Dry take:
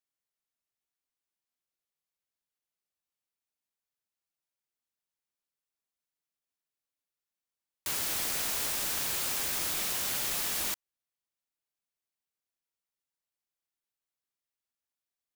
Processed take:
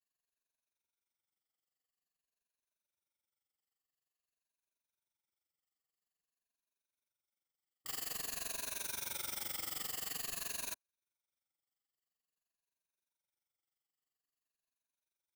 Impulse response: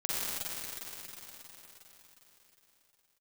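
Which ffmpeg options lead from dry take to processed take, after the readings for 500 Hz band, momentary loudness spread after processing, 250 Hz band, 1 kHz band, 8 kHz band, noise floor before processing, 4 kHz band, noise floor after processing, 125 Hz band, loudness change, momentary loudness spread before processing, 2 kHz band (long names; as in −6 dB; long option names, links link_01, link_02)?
−10.0 dB, 4 LU, −10.5 dB, −10.0 dB, −9.5 dB, below −85 dBFS, −10.0 dB, below −85 dBFS, −10.5 dB, −10.0 dB, 4 LU, −10.0 dB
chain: -af "afftfilt=real='re*pow(10,15/40*sin(2*PI*(1.5*log(max(b,1)*sr/1024/100)/log(2)-(-0.49)*(pts-256)/sr)))':imag='im*pow(10,15/40*sin(2*PI*(1.5*log(max(b,1)*sr/1024/100)/log(2)-(-0.49)*(pts-256)/sr)))':win_size=1024:overlap=0.75,asoftclip=type=tanh:threshold=-34.5dB,tremolo=f=23:d=0.857,volume=-1.5dB"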